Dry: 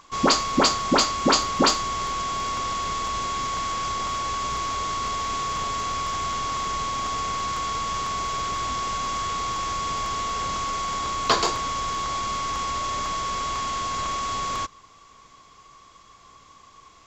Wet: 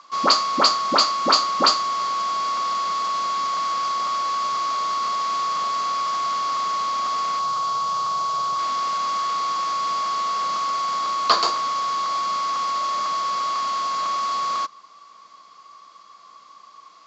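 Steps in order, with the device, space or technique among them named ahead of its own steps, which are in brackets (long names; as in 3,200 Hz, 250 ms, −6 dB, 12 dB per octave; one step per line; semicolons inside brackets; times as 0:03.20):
0:07.39–0:08.59: octave-band graphic EQ 125/250/1,000/2,000 Hz +11/−7/+3/−9 dB
television speaker (loudspeaker in its box 200–6,900 Hz, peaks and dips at 260 Hz −5 dB, 400 Hz −5 dB, 620 Hz +4 dB, 1,200 Hz +10 dB, 4,500 Hz +9 dB)
level −2.5 dB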